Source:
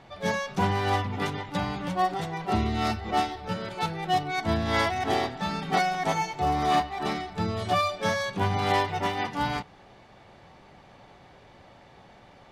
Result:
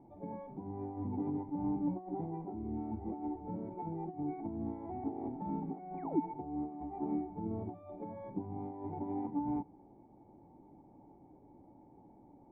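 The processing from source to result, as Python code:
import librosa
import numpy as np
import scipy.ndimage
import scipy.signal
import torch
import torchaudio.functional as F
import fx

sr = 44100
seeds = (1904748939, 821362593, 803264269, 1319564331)

y = fx.over_compress(x, sr, threshold_db=-30.0, ratio=-1.0)
y = fx.spec_paint(y, sr, seeds[0], shape='fall', start_s=5.97, length_s=0.23, low_hz=240.0, high_hz=2600.0, level_db=-27.0)
y = fx.formant_cascade(y, sr, vowel='u')
y = F.gain(torch.from_numpy(y), 2.0).numpy()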